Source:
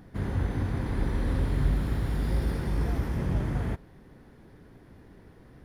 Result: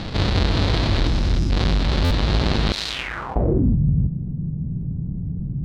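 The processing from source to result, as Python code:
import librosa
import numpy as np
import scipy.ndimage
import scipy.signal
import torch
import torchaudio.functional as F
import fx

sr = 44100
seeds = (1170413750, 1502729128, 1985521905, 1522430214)

p1 = fx.halfwave_hold(x, sr)
p2 = fx.spec_box(p1, sr, start_s=1.06, length_s=0.44, low_hz=370.0, high_hz=4800.0, gain_db=-14)
p3 = p2 + fx.echo_single(p2, sr, ms=321, db=-3.5, dry=0)
p4 = fx.rider(p3, sr, range_db=10, speed_s=0.5)
p5 = fx.filter_sweep_lowpass(p4, sr, from_hz=4100.0, to_hz=160.0, start_s=2.89, end_s=3.78, q=3.8)
p6 = fx.pre_emphasis(p5, sr, coefficient=0.97, at=(2.72, 3.36))
p7 = fx.buffer_glitch(p6, sr, at_s=(2.04,), block=512, repeats=5)
y = fx.env_flatten(p7, sr, amount_pct=50)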